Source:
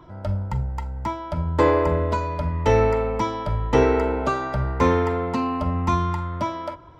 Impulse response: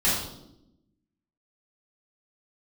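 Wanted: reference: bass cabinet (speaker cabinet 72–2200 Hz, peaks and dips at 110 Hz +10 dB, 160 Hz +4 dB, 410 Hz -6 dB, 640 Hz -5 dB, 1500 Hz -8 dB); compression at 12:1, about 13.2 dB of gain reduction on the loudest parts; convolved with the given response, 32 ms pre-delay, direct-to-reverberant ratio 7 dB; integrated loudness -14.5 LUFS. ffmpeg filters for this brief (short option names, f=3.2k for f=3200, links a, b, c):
-filter_complex "[0:a]acompressor=threshold=-26dB:ratio=12,asplit=2[a][b];[1:a]atrim=start_sample=2205,adelay=32[c];[b][c]afir=irnorm=-1:irlink=0,volume=-20.5dB[d];[a][d]amix=inputs=2:normalize=0,highpass=f=72:w=0.5412,highpass=f=72:w=1.3066,equalizer=f=110:t=q:w=4:g=10,equalizer=f=160:t=q:w=4:g=4,equalizer=f=410:t=q:w=4:g=-6,equalizer=f=640:t=q:w=4:g=-5,equalizer=f=1.5k:t=q:w=4:g=-8,lowpass=f=2.2k:w=0.5412,lowpass=f=2.2k:w=1.3066,volume=14dB"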